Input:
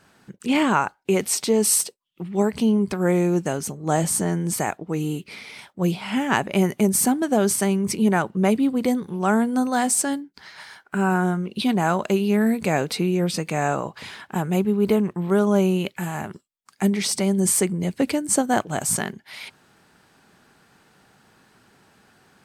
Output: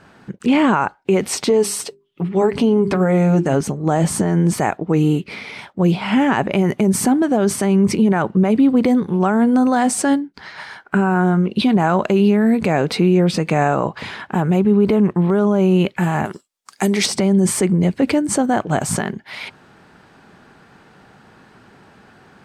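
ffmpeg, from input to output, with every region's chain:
-filter_complex "[0:a]asettb=1/sr,asplit=3[s0][s1][s2];[s0]atrim=end=1.494[s3];[s1]atrim=start=1.49:end=3.61,asetpts=PTS-STARTPTS,afade=t=in:d=0.004:c=qsin,afade=t=out:st=2.116:d=0.004:c=qsin,bandreject=f=50:t=h:w=6,bandreject=f=100:t=h:w=6,bandreject=f=150:t=h:w=6,bandreject=f=200:t=h:w=6,bandreject=f=250:t=h:w=6,bandreject=f=300:t=h:w=6,bandreject=f=350:t=h:w=6,bandreject=f=400:t=h:w=6,aecho=1:1:7.1:0.44,atrim=end_sample=93492,acompressor=threshold=0.1:ratio=3:attack=3.2:release=140:knee=1:detection=peak[s4];[s2]atrim=start=3.606[s5];[s3][s4]acrossfade=d=0.004:c1=hsin:c2=qsin[s6];[s6][s5]acrossfade=d=0.004:c1=qsin:c2=hsin,asettb=1/sr,asplit=3[s7][s8][s9];[s7]atrim=end=16.254[s10];[s8]atrim=start=16.25:end=17.06,asetpts=PTS-STARTPTS,afade=t=in:d=0.004:c=qsin,afade=t=out:st=0.806:d=0.004:c=qsin,bass=f=250:g=-9,treble=f=4000:g=13,volume=3.35,asoftclip=hard,volume=0.299[s11];[s9]atrim=start=17.056[s12];[s10][s11]acrossfade=d=0.004:c1=hsin:c2=qsin[s13];[s13][s12]acrossfade=d=0.004:c1=qsin:c2=hsin,aemphasis=mode=reproduction:type=75kf,alimiter=level_in=6.68:limit=0.891:release=50:level=0:latency=1,volume=0.501"

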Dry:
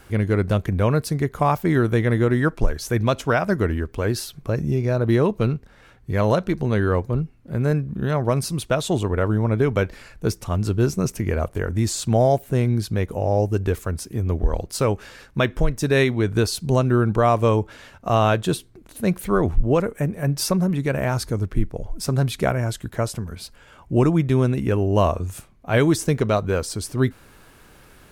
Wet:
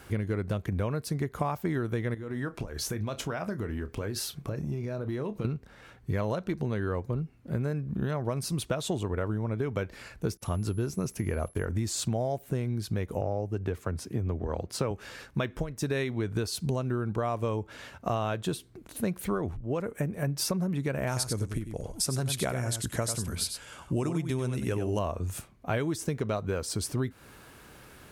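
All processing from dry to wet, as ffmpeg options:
-filter_complex "[0:a]asettb=1/sr,asplit=3[s0][s1][s2];[s0]atrim=end=2.144[s3];[s1]atrim=start=2.14:end=5.45,asetpts=PTS-STARTPTS,afade=t=in:d=0.004:c=qsin,afade=t=out:st=3.306:d=0.004:c=qsin,acompressor=threshold=0.0447:ratio=10:attack=3.2:release=140:knee=1:detection=peak,asplit=2[s4][s5];[s5]adelay=29,volume=0.266[s6];[s4][s6]amix=inputs=2:normalize=0,atrim=end_sample=145971[s7];[s2]atrim=start=5.446[s8];[s3][s7]acrossfade=d=0.004:c1=hsin:c2=qsin[s9];[s9][s8]acrossfade=d=0.004:c1=qsin:c2=hsin,asettb=1/sr,asplit=3[s10][s11][s12];[s10]atrim=end=10.374[s13];[s11]atrim=start=10.37:end=11.65,asetpts=PTS-STARTPTS,afade=t=in:d=0.004:c=qsin,afade=t=out:st=1.276:d=0.004:c=qsin,aeval=exprs='val(0)+0.00501*sin(2*PI*11000*n/s)':c=same,agate=range=0.0224:threshold=0.0178:ratio=3:release=100:detection=peak[s14];[s12]atrim=start=11.646[s15];[s13][s14]acrossfade=d=0.004:c1=hsin:c2=qsin[s16];[s16][s15]acrossfade=d=0.004:c1=qsin:c2=hsin,asettb=1/sr,asplit=3[s17][s18][s19];[s17]atrim=end=13.214[s20];[s18]atrim=start=13.21:end=14.91,asetpts=PTS-STARTPTS,afade=t=in:d=0.004:c=qsin,afade=t=out:st=1.696:d=0.004:c=qsin,highpass=f=73:w=0.5412,highpass=f=73:w=1.3066,highshelf=f=5100:g=-10[s21];[s19]atrim=start=14.906[s22];[s20][s21]acrossfade=d=0.004:c1=hsin:c2=qsin[s23];[s23][s22]acrossfade=d=0.004:c1=qsin:c2=hsin,asettb=1/sr,asplit=3[s24][s25][s26];[s24]atrim=end=21.074[s27];[s25]atrim=start=21.07:end=24.99,asetpts=PTS-STARTPTS,afade=t=in:d=0.004:c=qsin,afade=t=out:st=3.916:d=0.004:c=qsin,lowpass=f=11000:w=0.5412,lowpass=f=11000:w=1.3066,aemphasis=mode=production:type=75kf,aecho=1:1:95:0.376,atrim=end_sample=172872[s28];[s26]atrim=start=24.986[s29];[s27][s28]acrossfade=d=0.004:c1=hsin:c2=qsin[s30];[s30][s29]acrossfade=d=0.004:c1=qsin:c2=hsin,acompressor=threshold=0.0562:ratio=10,highpass=51,volume=0.891"

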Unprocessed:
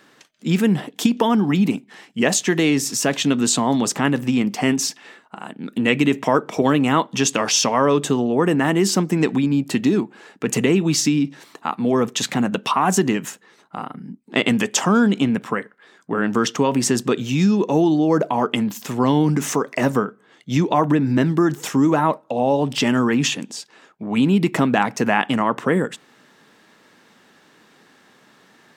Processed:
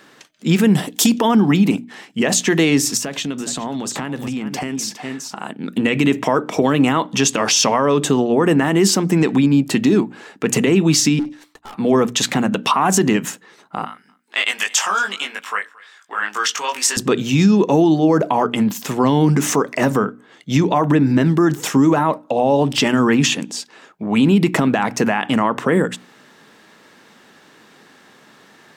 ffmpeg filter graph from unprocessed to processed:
-filter_complex "[0:a]asettb=1/sr,asplit=3[s0][s1][s2];[s0]atrim=end=0.754[s3];[s1]atrim=start=0.75:end=1.19,asetpts=PTS-STARTPTS,afade=t=in:d=0.004:c=qsin,afade=t=out:st=0.436:d=0.004:c=qsin,bass=f=250:g=1,treble=f=4000:g=12,asoftclip=type=hard:threshold=0.422[s4];[s2]atrim=start=1.186[s5];[s3][s4]acrossfade=d=0.004:c1=hsin:c2=qsin[s6];[s6][s5]acrossfade=d=0.004:c1=qsin:c2=hsin,asettb=1/sr,asplit=3[s7][s8][s9];[s7]atrim=end=2.974[s10];[s8]atrim=start=2.97:end=5.4,asetpts=PTS-STARTPTS,afade=t=in:d=0.004:c=qsin,afade=t=out:st=2.426:d=0.004:c=qsin,aecho=1:1:411:0.2,atrim=end_sample=107163,acompressor=threshold=0.0562:ratio=10:attack=3.2:release=140:knee=1:detection=peak[s11];[s9]atrim=start=5.396[s12];[s10][s11]acrossfade=d=0.004:c1=hsin:c2=qsin[s13];[s13][s12]acrossfade=d=0.004:c1=qsin:c2=hsin,asettb=1/sr,asplit=3[s14][s15][s16];[s14]atrim=end=11.194[s17];[s15]atrim=start=11.19:end=11.75,asetpts=PTS-STARTPTS,afade=t=in:d=0.004:c=qsin,afade=t=out:st=0.556:d=0.004:c=qsin,highpass=f=480:p=1,agate=range=0.0224:threshold=0.01:ratio=3:release=100:detection=peak,aeval=exprs='(tanh(79.4*val(0)+0.35)-tanh(0.35))/79.4':c=same[s18];[s16]atrim=start=11.746[s19];[s17][s18]acrossfade=d=0.004:c1=hsin:c2=qsin[s20];[s20][s19]acrossfade=d=0.004:c1=qsin:c2=hsin,asettb=1/sr,asplit=3[s21][s22][s23];[s21]atrim=end=13.864[s24];[s22]atrim=start=13.86:end=16.97,asetpts=PTS-STARTPTS,afade=t=in:d=0.004:c=qsin,afade=t=out:st=3.106:d=0.004:c=qsin,highpass=1300,asplit=2[s25][s26];[s26]adelay=20,volume=0.794[s27];[s25][s27]amix=inputs=2:normalize=0,atrim=end_sample=137151,aecho=1:1:225:0.0668,atrim=end_sample=137151[s28];[s23]atrim=start=16.966[s29];[s24][s28]acrossfade=d=0.004:c1=hsin:c2=qsin[s30];[s30][s29]acrossfade=d=0.004:c1=qsin:c2=hsin,bandreject=f=60:t=h:w=6,bandreject=f=120:t=h:w=6,bandreject=f=180:t=h:w=6,bandreject=f=240:t=h:w=6,bandreject=f=300:t=h:w=6,alimiter=limit=0.299:level=0:latency=1:release=46,volume=1.78"

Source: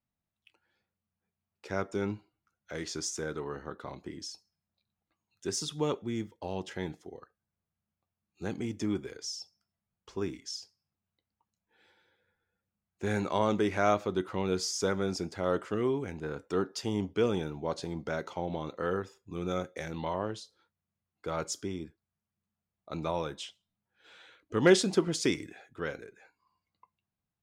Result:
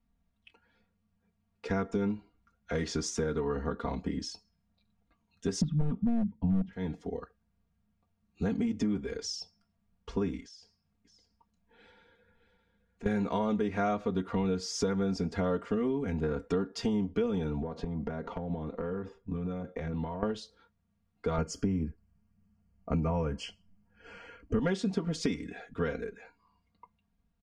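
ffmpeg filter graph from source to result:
-filter_complex "[0:a]asettb=1/sr,asplit=3[s0][s1][s2];[s0]atrim=end=5.614[s3];[s1]atrim=start=5.61:end=6.73,asetpts=PTS-STARTPTS,afade=t=in:d=0.004:c=qsin,afade=t=out:st=1.116:d=0.004:c=qsin,lowpass=2200,lowshelf=f=300:t=q:w=3:g=14,aeval=exprs='0.15*(abs(mod(val(0)/0.15+3,4)-2)-1)':c=same[s4];[s2]atrim=start=6.726[s5];[s3][s4]acrossfade=d=0.004:c1=hsin:c2=qsin[s6];[s6][s5]acrossfade=d=0.004:c1=qsin:c2=hsin,asettb=1/sr,asplit=3[s7][s8][s9];[s7]atrim=end=10.434[s10];[s8]atrim=start=10.43:end=13.06,asetpts=PTS-STARTPTS,afade=t=in:d=0.004:c=qsin,afade=t=out:st=2.626:d=0.004:c=qsin,acompressor=threshold=0.00112:ratio=2.5:attack=3.2:release=140:knee=1:detection=peak,aecho=1:1:616:0.251,atrim=end_sample=115983[s11];[s9]atrim=start=13.056[s12];[s10][s11]acrossfade=d=0.004:c1=hsin:c2=qsin[s13];[s13][s12]acrossfade=d=0.004:c1=qsin:c2=hsin,asettb=1/sr,asplit=3[s14][s15][s16];[s14]atrim=end=17.624[s17];[s15]atrim=start=17.62:end=20.23,asetpts=PTS-STARTPTS,afade=t=in:d=0.004:c=qsin,afade=t=out:st=2.606:d=0.004:c=qsin,lowpass=f=1400:p=1,acompressor=threshold=0.01:ratio=16:attack=3.2:release=140:knee=1:detection=peak[s18];[s16]atrim=start=20.226[s19];[s17][s18]acrossfade=d=0.004:c1=hsin:c2=qsin[s20];[s20][s19]acrossfade=d=0.004:c1=qsin:c2=hsin,asettb=1/sr,asplit=3[s21][s22][s23];[s21]atrim=end=21.384[s24];[s22]atrim=start=21.38:end=24.59,asetpts=PTS-STARTPTS,afade=t=in:d=0.004:c=qsin,afade=t=out:st=3.206:d=0.004:c=qsin,asuperstop=centerf=3700:order=12:qfactor=3.6,lowshelf=f=230:g=9.5[s25];[s23]atrim=start=24.586[s26];[s24][s25]acrossfade=d=0.004:c1=hsin:c2=qsin[s27];[s27][s26]acrossfade=d=0.004:c1=qsin:c2=hsin,aemphasis=mode=reproduction:type=bsi,aecho=1:1:4.3:0.93,acompressor=threshold=0.0251:ratio=6,volume=1.68"

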